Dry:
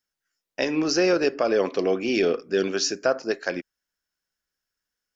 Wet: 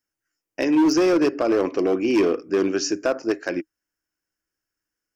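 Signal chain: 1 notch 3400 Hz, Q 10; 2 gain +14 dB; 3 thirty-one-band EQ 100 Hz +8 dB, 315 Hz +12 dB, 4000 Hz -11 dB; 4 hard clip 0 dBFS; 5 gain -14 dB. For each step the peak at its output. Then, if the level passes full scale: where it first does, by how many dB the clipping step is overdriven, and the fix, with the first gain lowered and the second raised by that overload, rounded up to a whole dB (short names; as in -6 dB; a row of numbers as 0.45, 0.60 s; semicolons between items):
-9.5, +4.5, +9.0, 0.0, -14.0 dBFS; step 2, 9.0 dB; step 2 +5 dB, step 5 -5 dB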